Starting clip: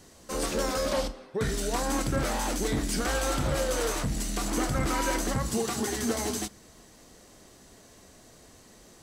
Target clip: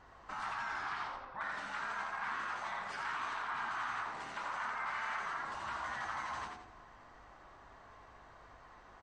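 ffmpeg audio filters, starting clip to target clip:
ffmpeg -i in.wav -filter_complex "[0:a]lowpass=1200,equalizer=frequency=190:width_type=o:width=1.1:gain=-10.5,bandreject=frequency=81.07:width_type=h:width=4,bandreject=frequency=162.14:width_type=h:width=4,bandreject=frequency=243.21:width_type=h:width=4,bandreject=frequency=324.28:width_type=h:width=4,bandreject=frequency=405.35:width_type=h:width=4,bandreject=frequency=486.42:width_type=h:width=4,bandreject=frequency=567.49:width_type=h:width=4,bandreject=frequency=648.56:width_type=h:width=4,bandreject=frequency=729.63:width_type=h:width=4,bandreject=frequency=810.7:width_type=h:width=4,bandreject=frequency=891.77:width_type=h:width=4,bandreject=frequency=972.84:width_type=h:width=4,bandreject=frequency=1053.91:width_type=h:width=4,bandreject=frequency=1134.98:width_type=h:width=4,bandreject=frequency=1216.05:width_type=h:width=4,bandreject=frequency=1297.12:width_type=h:width=4,bandreject=frequency=1378.19:width_type=h:width=4,bandreject=frequency=1459.26:width_type=h:width=4,bandreject=frequency=1540.33:width_type=h:width=4,bandreject=frequency=1621.4:width_type=h:width=4,bandreject=frequency=1702.47:width_type=h:width=4,bandreject=frequency=1783.54:width_type=h:width=4,bandreject=frequency=1864.61:width_type=h:width=4,bandreject=frequency=1945.68:width_type=h:width=4,bandreject=frequency=2026.75:width_type=h:width=4,bandreject=frequency=2107.82:width_type=h:width=4,bandreject=frequency=2188.89:width_type=h:width=4,bandreject=frequency=2269.96:width_type=h:width=4,bandreject=frequency=2351.03:width_type=h:width=4,bandreject=frequency=2432.1:width_type=h:width=4,bandreject=frequency=2513.17:width_type=h:width=4,bandreject=frequency=2594.24:width_type=h:width=4,afftfilt=real='re*lt(hypot(re,im),0.0447)':imag='im*lt(hypot(re,im),0.0447)':win_size=1024:overlap=0.75,acompressor=threshold=-43dB:ratio=10,lowshelf=frequency=700:width_type=q:width=1.5:gain=-11.5,asplit=2[link_01][link_02];[link_02]aecho=0:1:86|172|258|344|430:0.596|0.22|0.0815|0.0302|0.0112[link_03];[link_01][link_03]amix=inputs=2:normalize=0,aeval=exprs='val(0)+0.0002*(sin(2*PI*50*n/s)+sin(2*PI*2*50*n/s)/2+sin(2*PI*3*50*n/s)/3+sin(2*PI*4*50*n/s)/4+sin(2*PI*5*50*n/s)/5)':channel_layout=same,volume=6.5dB" -ar 22050 -c:a libmp3lame -b:a 40k out.mp3

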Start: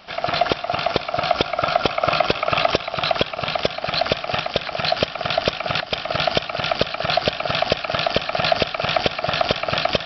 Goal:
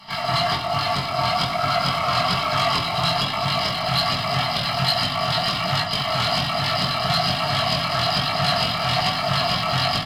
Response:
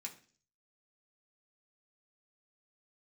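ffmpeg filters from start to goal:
-filter_complex "[0:a]flanger=delay=19.5:depth=6.2:speed=1.2,asplit=2[link_01][link_02];[link_02]acrusher=bits=6:dc=4:mix=0:aa=0.000001,volume=-9dB[link_03];[link_01][link_03]amix=inputs=2:normalize=0,equalizer=frequency=170:width_type=o:width=1.9:gain=3.5,aecho=1:1:1:0.91,asoftclip=type=tanh:threshold=-15.5dB,dynaudnorm=framelen=830:gausssize=5:maxgain=11.5dB,alimiter=limit=-17.5dB:level=0:latency=1:release=304[link_04];[1:a]atrim=start_sample=2205,asetrate=27342,aresample=44100[link_05];[link_04][link_05]afir=irnorm=-1:irlink=0,volume=3dB"

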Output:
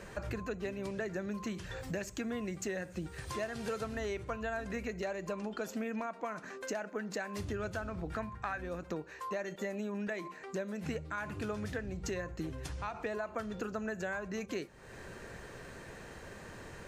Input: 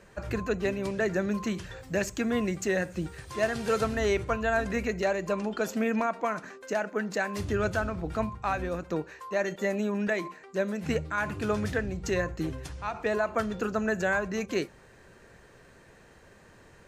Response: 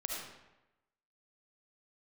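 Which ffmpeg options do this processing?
-filter_complex "[0:a]asettb=1/sr,asplit=3[link_01][link_02][link_03];[link_01]atrim=end=8.124[link_04];[link_02]atrim=start=8.12:end=8.61,asetpts=PTS-STARTPTS,afade=type=in:duration=0.004:curve=qsin,afade=type=out:start_time=0.486:duration=0.004:curve=qsin,equalizer=frequency=1700:width=2.9:gain=12[link_05];[link_03]atrim=start=8.606[link_06];[link_04][link_05]acrossfade=duration=0.004:curve1=hsin:curve2=qsin[link_07];[link_07][link_06]acrossfade=duration=0.004:curve1=qsin:curve2=hsin,acompressor=threshold=-45dB:ratio=4,volume=6.5dB"

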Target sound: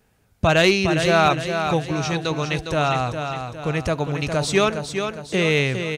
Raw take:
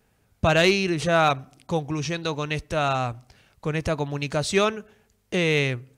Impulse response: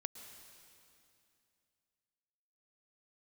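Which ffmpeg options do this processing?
-af "aecho=1:1:408|816|1224|1632|2040:0.447|0.205|0.0945|0.0435|0.02,volume=2.5dB"

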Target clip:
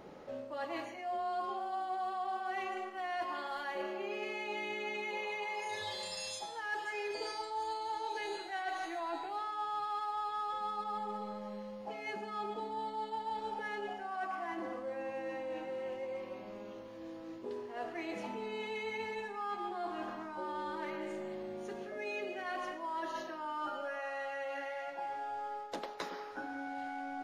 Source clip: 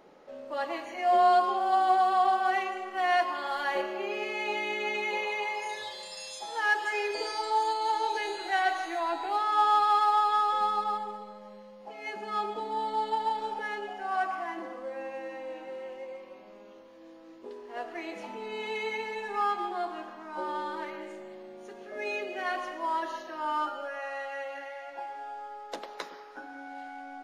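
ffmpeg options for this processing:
ffmpeg -i in.wav -af "equalizer=frequency=90:width_type=o:width=1.7:gain=14.5,areverse,acompressor=threshold=-40dB:ratio=5,areverse,volume=2.5dB" out.wav

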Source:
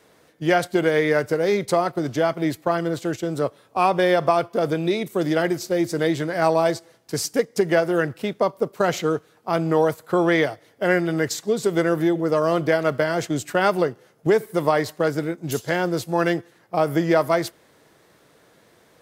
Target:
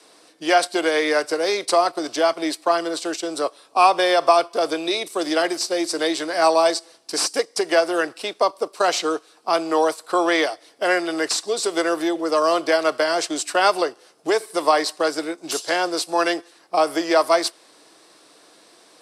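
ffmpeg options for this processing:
ffmpeg -i in.wav -filter_complex "[0:a]acrossover=split=370|720|3000[link_01][link_02][link_03][link_04];[link_01]acompressor=threshold=-42dB:ratio=5[link_05];[link_04]aeval=exprs='0.2*sin(PI/2*3.55*val(0)/0.2)':channel_layout=same[link_06];[link_05][link_02][link_03][link_06]amix=inputs=4:normalize=0,highpass=280,equalizer=frequency=310:width_type=q:width=4:gain=8,equalizer=frequency=720:width_type=q:width=4:gain=5,equalizer=frequency=1100:width_type=q:width=4:gain=6,equalizer=frequency=2000:width_type=q:width=4:gain=-4,equalizer=frequency=3300:width_type=q:width=4:gain=-5,equalizer=frequency=6700:width_type=q:width=4:gain=-9,lowpass=frequency=9200:width=0.5412,lowpass=frequency=9200:width=1.3066" out.wav

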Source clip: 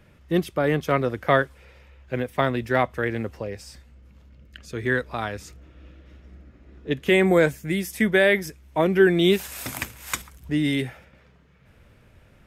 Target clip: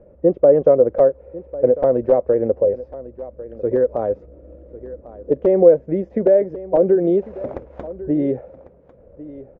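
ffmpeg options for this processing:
ffmpeg -i in.wav -af "equalizer=frequency=120:width=0.89:gain=-6.5,acompressor=threshold=-22dB:ratio=6,aresample=16000,aeval=exprs='(mod(5.31*val(0)+1,2)-1)/5.31':channel_layout=same,aresample=44100,lowpass=frequency=540:width_type=q:width=5.6,atempo=1.3,aecho=1:1:1098:0.141,volume=5dB" out.wav

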